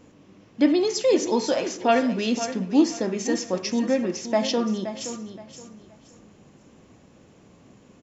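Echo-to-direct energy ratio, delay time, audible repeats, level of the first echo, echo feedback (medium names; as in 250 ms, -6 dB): -10.5 dB, 522 ms, 3, -11.0 dB, 27%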